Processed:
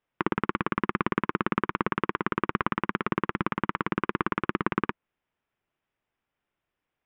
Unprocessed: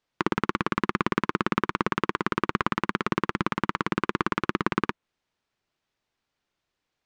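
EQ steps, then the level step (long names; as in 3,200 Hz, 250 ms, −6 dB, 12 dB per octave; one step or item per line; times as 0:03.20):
Savitzky-Golay smoothing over 25 samples
−1.5 dB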